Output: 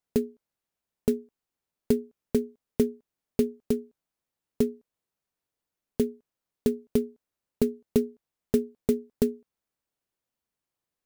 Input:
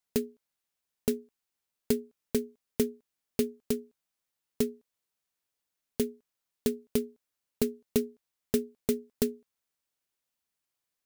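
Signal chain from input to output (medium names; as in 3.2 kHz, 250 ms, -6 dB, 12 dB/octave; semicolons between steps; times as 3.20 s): tilt shelf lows +5 dB, about 1.2 kHz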